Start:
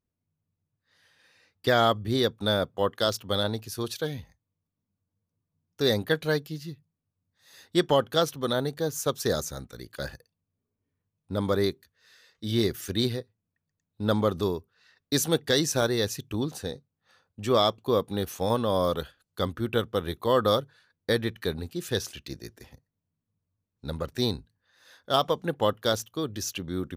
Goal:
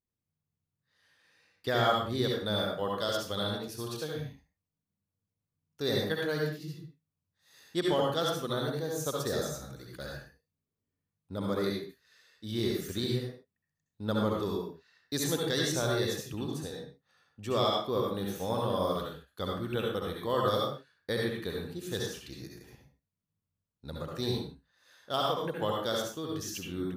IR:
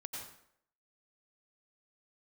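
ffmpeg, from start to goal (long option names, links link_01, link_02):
-filter_complex "[1:a]atrim=start_sample=2205,afade=type=out:start_time=0.39:duration=0.01,atrim=end_sample=17640,asetrate=61740,aresample=44100[link_01];[0:a][link_01]afir=irnorm=-1:irlink=0"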